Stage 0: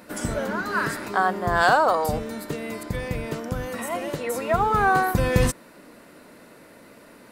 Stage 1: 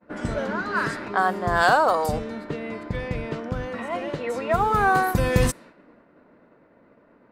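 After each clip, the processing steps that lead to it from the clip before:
downward expander −42 dBFS
low-pass that shuts in the quiet parts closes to 1,400 Hz, open at −17.5 dBFS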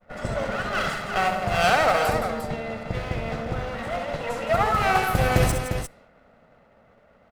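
lower of the sound and its delayed copy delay 1.5 ms
multi-tap delay 66/168/351 ms −7.5/−9/−7.5 dB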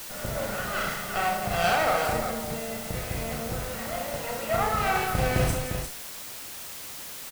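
double-tracking delay 35 ms −4 dB
background noise white −34 dBFS
level −5.5 dB

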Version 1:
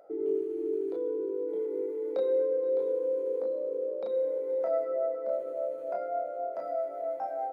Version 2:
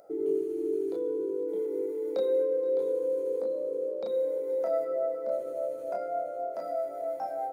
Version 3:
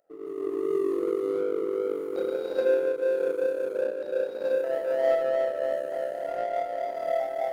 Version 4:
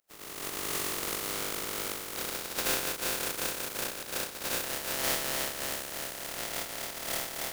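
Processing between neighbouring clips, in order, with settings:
bass and treble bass +8 dB, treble +13 dB
reverb whose tail is shaped and stops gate 470 ms rising, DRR −8 dB; power curve on the samples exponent 1.4; level −2 dB
compressing power law on the bin magnitudes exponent 0.2; level −7 dB

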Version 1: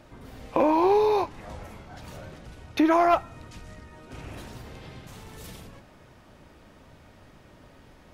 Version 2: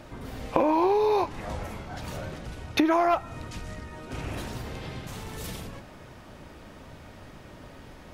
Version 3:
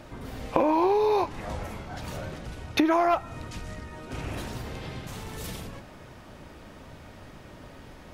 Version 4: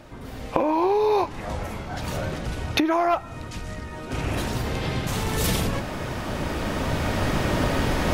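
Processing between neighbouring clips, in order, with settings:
downward compressor 12 to 1, threshold −25 dBFS, peak gain reduction 9.5 dB; level +6 dB
no processing that can be heard
camcorder AGC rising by 5.1 dB per second

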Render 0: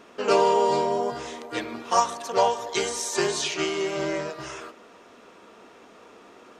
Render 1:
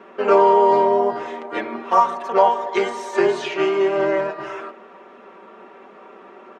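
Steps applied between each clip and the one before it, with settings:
three-way crossover with the lows and the highs turned down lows −17 dB, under 200 Hz, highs −22 dB, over 2,500 Hz
comb filter 5.2 ms, depth 64%
in parallel at 0 dB: brickwall limiter −14.5 dBFS, peak gain reduction 10.5 dB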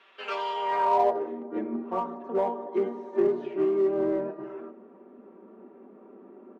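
running median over 5 samples
band-pass filter sweep 3,500 Hz → 260 Hz, 0:00.55–0:01.35
in parallel at −8 dB: gain into a clipping stage and back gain 28 dB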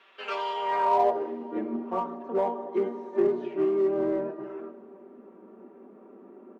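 dense smooth reverb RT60 3.9 s, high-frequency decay 1×, DRR 19.5 dB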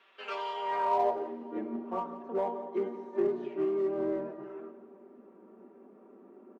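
single-tap delay 173 ms −16 dB
level −5 dB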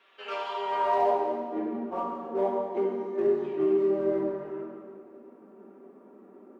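dense smooth reverb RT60 1.7 s, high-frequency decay 0.9×, DRR −1 dB

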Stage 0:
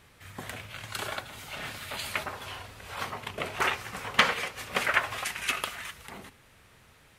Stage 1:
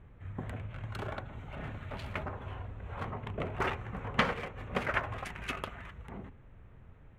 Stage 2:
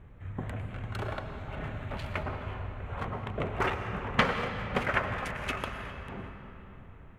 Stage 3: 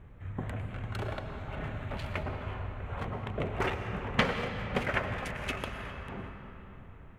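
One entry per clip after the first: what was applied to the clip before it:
adaptive Wiener filter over 9 samples; spectral tilt −3.5 dB per octave; level −4.5 dB
convolution reverb RT60 3.6 s, pre-delay 75 ms, DRR 6.5 dB; level +3 dB
dynamic equaliser 1,200 Hz, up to −5 dB, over −42 dBFS, Q 1.3

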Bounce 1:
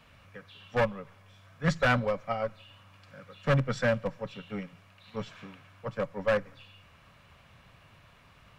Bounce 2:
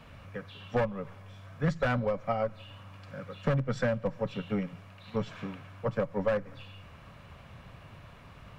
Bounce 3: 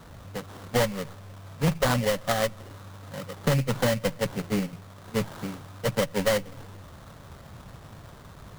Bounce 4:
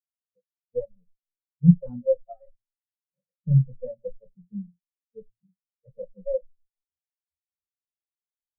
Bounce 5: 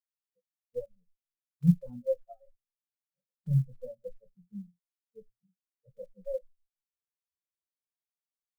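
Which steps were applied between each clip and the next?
tilt shelving filter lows +4 dB, about 1,200 Hz; downward compressor 5 to 1, threshold −31 dBFS, peak gain reduction 12.5 dB; level +5 dB
sample-rate reduction 2,500 Hz, jitter 20%; level +4.5 dB
convolution reverb RT60 0.35 s, pre-delay 6 ms, DRR 6 dB; every bin expanded away from the loudest bin 4 to 1; level +5 dB
one scale factor per block 7 bits; level −7.5 dB

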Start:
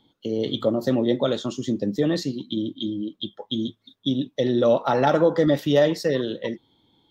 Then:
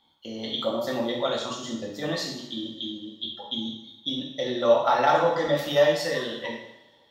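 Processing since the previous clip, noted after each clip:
low shelf with overshoot 580 Hz −10 dB, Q 1.5
coupled-rooms reverb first 0.77 s, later 2.4 s, from −22 dB, DRR −2.5 dB
level −2.5 dB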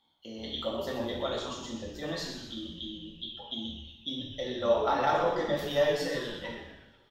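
echo with shifted repeats 124 ms, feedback 46%, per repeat −150 Hz, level −9 dB
level −6.5 dB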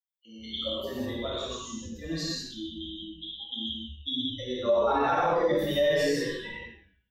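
spectral dynamics exaggerated over time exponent 2
reverb whose tail is shaped and stops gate 220 ms flat, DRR −5.5 dB
brickwall limiter −19.5 dBFS, peak gain reduction 8.5 dB
level +3 dB

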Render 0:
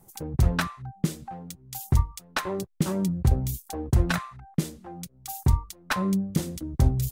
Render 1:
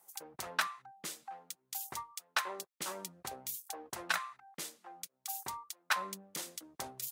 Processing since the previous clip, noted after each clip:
high-pass filter 850 Hz 12 dB per octave
level −3 dB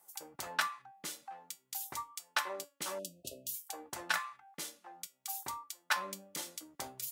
tuned comb filter 290 Hz, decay 0.2 s, harmonics all, mix 70%
hum removal 279.4 Hz, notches 12
time-frequency box erased 0:02.99–0:03.55, 710–2,500 Hz
level +8 dB

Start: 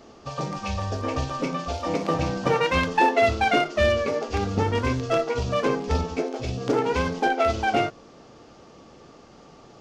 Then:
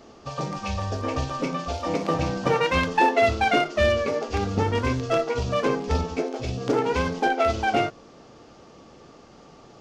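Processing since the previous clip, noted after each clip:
no processing that can be heard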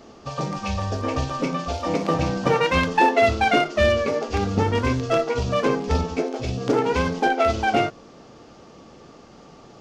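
parametric band 200 Hz +2 dB
level +2 dB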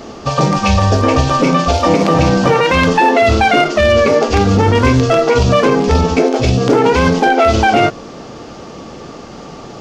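boost into a limiter +16 dB
level −1 dB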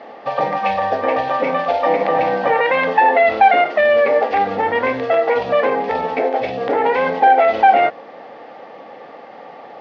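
loudspeaker in its box 350–3,400 Hz, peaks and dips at 370 Hz −6 dB, 530 Hz +7 dB, 790 Hz +10 dB, 1,300 Hz −3 dB, 1,900 Hz +10 dB, 2,900 Hz −3 dB
level −7 dB

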